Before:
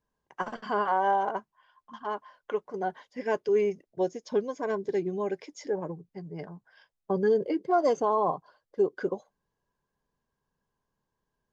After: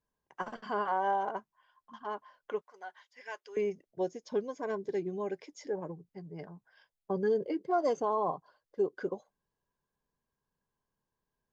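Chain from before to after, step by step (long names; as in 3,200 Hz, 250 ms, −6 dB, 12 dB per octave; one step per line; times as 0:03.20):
0:02.61–0:03.57: high-pass filter 1,200 Hz 12 dB per octave
level −5 dB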